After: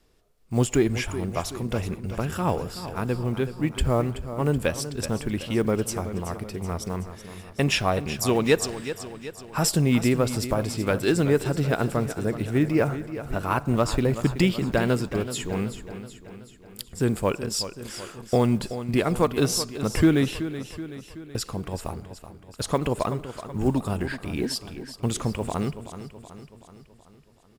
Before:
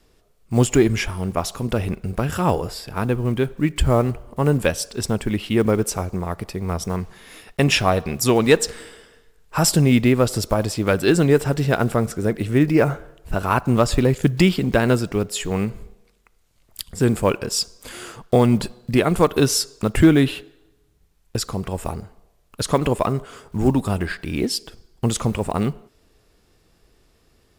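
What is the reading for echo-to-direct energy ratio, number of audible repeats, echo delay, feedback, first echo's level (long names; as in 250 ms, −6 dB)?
−10.5 dB, 5, 377 ms, 55%, −12.0 dB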